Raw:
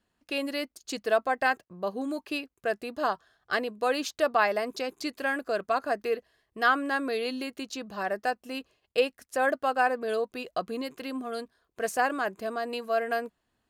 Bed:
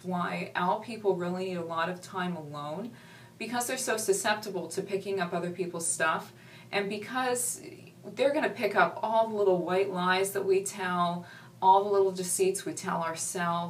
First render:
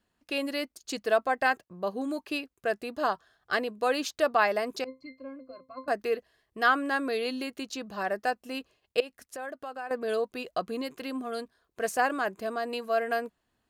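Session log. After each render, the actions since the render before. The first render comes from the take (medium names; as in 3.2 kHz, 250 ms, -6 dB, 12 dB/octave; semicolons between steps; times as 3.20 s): 4.84–5.88 s: pitch-class resonator C, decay 0.19 s; 9.00–9.91 s: compression 2.5:1, threshold -41 dBFS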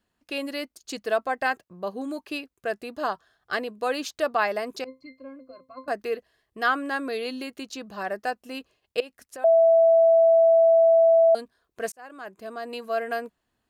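9.44–11.35 s: bleep 660 Hz -13.5 dBFS; 11.92–12.86 s: fade in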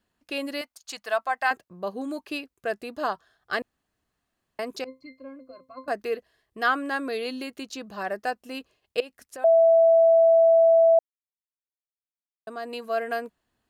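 0.61–1.51 s: resonant low shelf 570 Hz -12 dB, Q 1.5; 3.62–4.59 s: room tone; 10.99–12.47 s: mute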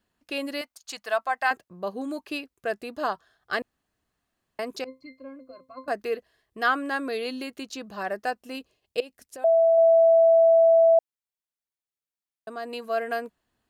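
8.56–9.78 s: peaking EQ 1.4 kHz -6 dB 1.5 oct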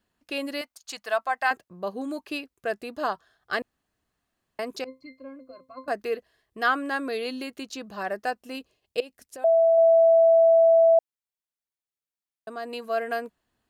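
no audible change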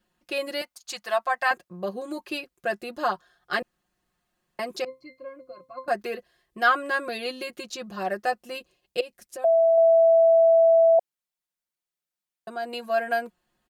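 comb 5.6 ms, depth 85%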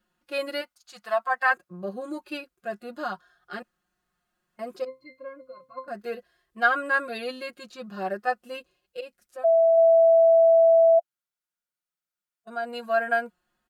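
peaking EQ 1.4 kHz +8 dB 0.38 oct; harmonic-percussive split percussive -16 dB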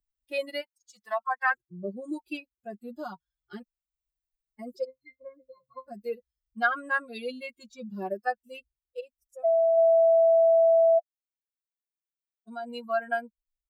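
expander on every frequency bin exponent 2; three bands compressed up and down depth 40%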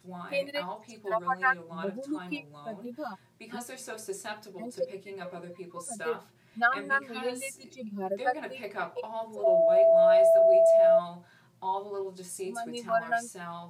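add bed -10.5 dB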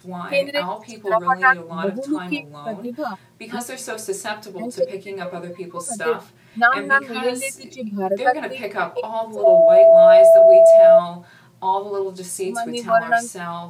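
trim +11 dB; peak limiter -3 dBFS, peak gain reduction 2 dB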